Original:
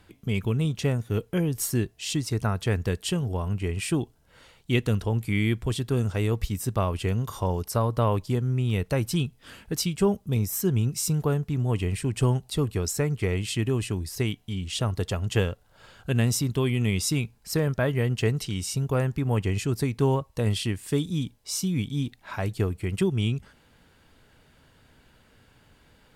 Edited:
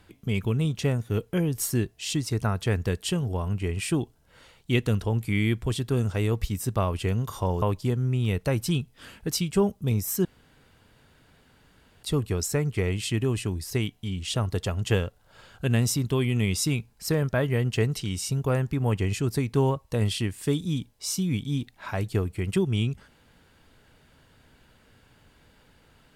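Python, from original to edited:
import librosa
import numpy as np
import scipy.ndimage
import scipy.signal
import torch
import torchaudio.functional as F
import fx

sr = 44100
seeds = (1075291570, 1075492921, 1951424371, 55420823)

y = fx.edit(x, sr, fx.cut(start_s=7.62, length_s=0.45),
    fx.room_tone_fill(start_s=10.7, length_s=1.78), tone=tone)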